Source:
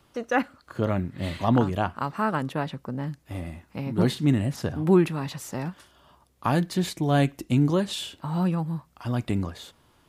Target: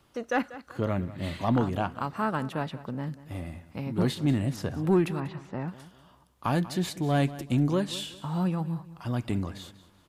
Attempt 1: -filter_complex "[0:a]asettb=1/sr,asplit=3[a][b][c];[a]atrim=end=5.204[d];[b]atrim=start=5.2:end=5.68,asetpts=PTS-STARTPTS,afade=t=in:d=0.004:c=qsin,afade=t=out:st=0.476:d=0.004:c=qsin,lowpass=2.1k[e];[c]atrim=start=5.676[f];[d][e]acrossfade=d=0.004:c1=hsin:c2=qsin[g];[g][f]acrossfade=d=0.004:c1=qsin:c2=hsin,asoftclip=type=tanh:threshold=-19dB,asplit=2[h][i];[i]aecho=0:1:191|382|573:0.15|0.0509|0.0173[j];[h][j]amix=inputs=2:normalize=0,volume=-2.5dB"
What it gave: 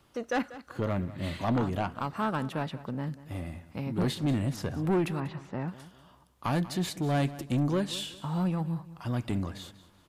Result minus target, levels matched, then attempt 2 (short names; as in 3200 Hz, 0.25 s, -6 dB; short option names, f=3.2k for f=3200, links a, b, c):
soft clip: distortion +10 dB
-filter_complex "[0:a]asettb=1/sr,asplit=3[a][b][c];[a]atrim=end=5.204[d];[b]atrim=start=5.2:end=5.68,asetpts=PTS-STARTPTS,afade=t=in:d=0.004:c=qsin,afade=t=out:st=0.476:d=0.004:c=qsin,lowpass=2.1k[e];[c]atrim=start=5.676[f];[d][e]acrossfade=d=0.004:c1=hsin:c2=qsin[g];[g][f]acrossfade=d=0.004:c1=qsin:c2=hsin,asoftclip=type=tanh:threshold=-11.5dB,asplit=2[h][i];[i]aecho=0:1:191|382|573:0.15|0.0509|0.0173[j];[h][j]amix=inputs=2:normalize=0,volume=-2.5dB"